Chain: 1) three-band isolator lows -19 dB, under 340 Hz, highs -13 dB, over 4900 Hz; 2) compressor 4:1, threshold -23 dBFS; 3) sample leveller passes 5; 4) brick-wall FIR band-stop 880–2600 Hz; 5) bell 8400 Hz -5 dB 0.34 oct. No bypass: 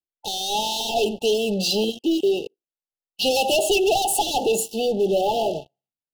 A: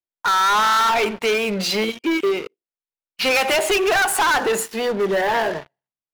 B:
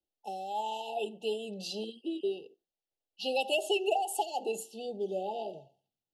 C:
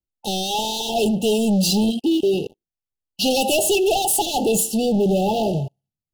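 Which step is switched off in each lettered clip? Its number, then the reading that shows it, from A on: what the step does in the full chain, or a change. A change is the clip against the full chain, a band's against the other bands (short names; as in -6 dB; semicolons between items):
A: 4, 2 kHz band +12.5 dB; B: 3, momentary loudness spread change +4 LU; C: 1, 125 Hz band +10.5 dB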